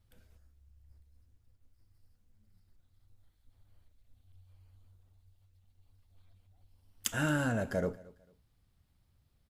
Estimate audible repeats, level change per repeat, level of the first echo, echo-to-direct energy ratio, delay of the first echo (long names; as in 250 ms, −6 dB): 2, −11.5 dB, −22.0 dB, −21.5 dB, 224 ms